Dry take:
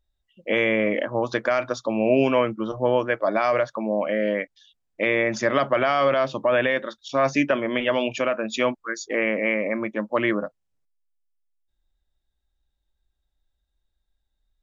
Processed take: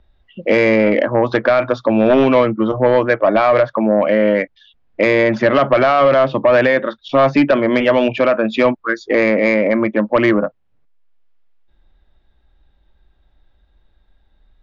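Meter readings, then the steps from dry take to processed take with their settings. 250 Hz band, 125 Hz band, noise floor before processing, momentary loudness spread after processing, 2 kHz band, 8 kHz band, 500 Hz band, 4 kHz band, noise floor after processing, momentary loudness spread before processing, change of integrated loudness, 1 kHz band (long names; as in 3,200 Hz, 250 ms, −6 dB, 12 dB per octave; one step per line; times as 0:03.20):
+10.0 dB, +10.0 dB, −77 dBFS, 5 LU, +6.5 dB, can't be measured, +9.0 dB, +4.5 dB, −59 dBFS, 7 LU, +8.5 dB, +8.0 dB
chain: high-frequency loss of the air 360 metres
sine wavefolder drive 6 dB, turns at −6.5 dBFS
multiband upward and downward compressor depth 40%
level +1.5 dB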